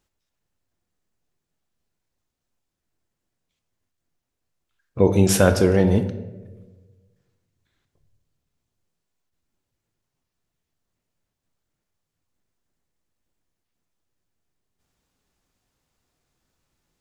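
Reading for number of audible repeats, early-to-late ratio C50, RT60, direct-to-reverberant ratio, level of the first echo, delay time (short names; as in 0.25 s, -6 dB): none, 11.0 dB, 1.2 s, 8.0 dB, none, none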